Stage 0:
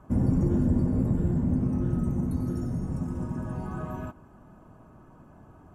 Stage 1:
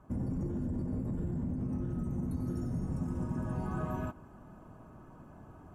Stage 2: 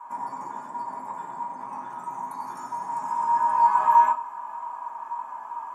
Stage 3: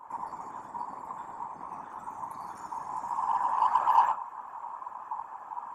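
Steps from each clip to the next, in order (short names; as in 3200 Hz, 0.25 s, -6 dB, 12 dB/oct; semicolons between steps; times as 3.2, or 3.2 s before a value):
limiter -21.5 dBFS, peak gain reduction 7.5 dB; vocal rider; gain -5 dB
resonant high-pass 970 Hz, resonance Q 11; reverb RT60 0.25 s, pre-delay 3 ms, DRR -5 dB; gain +5.5 dB
band noise 110–860 Hz -62 dBFS; whisperiser; in parallel at -12 dB: overloaded stage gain 17.5 dB; on the sum: gain -7.5 dB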